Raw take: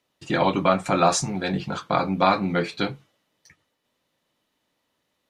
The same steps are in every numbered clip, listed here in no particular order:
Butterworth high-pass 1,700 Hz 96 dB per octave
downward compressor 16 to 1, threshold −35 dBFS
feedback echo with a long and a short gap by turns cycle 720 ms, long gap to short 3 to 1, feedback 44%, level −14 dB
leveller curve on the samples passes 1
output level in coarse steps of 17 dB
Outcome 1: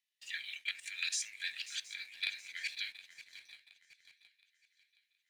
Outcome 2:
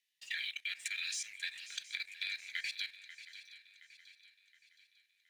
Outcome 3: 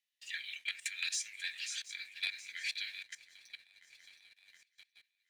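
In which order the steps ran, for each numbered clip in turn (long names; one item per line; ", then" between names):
output level in coarse steps, then Butterworth high-pass, then downward compressor, then feedback echo with a long and a short gap by turns, then leveller curve on the samples
Butterworth high-pass, then leveller curve on the samples, then output level in coarse steps, then downward compressor, then feedback echo with a long and a short gap by turns
feedback echo with a long and a short gap by turns, then output level in coarse steps, then Butterworth high-pass, then downward compressor, then leveller curve on the samples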